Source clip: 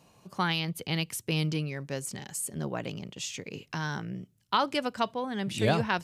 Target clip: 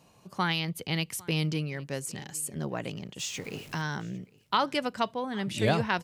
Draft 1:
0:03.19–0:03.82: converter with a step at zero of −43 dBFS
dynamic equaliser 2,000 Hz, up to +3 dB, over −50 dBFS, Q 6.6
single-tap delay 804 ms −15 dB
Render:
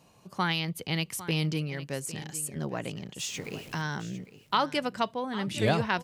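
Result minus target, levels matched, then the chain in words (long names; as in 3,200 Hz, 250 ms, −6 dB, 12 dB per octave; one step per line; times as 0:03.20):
echo-to-direct +9 dB
0:03.19–0:03.82: converter with a step at zero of −43 dBFS
dynamic equaliser 2,000 Hz, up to +3 dB, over −50 dBFS, Q 6.6
single-tap delay 804 ms −24 dB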